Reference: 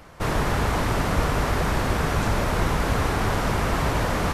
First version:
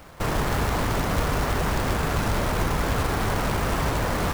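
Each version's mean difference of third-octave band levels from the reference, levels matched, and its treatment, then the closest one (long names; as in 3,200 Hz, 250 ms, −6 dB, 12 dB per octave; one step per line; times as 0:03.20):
2.0 dB: high-shelf EQ 6,100 Hz −10 dB
in parallel at 0 dB: brickwall limiter −19 dBFS, peak gain reduction 10.5 dB
on the sum: log-companded quantiser 4 bits
level −5.5 dB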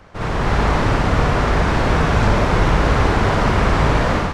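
4.0 dB: automatic gain control gain up to 6.5 dB
high-frequency loss of the air 90 metres
backwards echo 56 ms −3.5 dB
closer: first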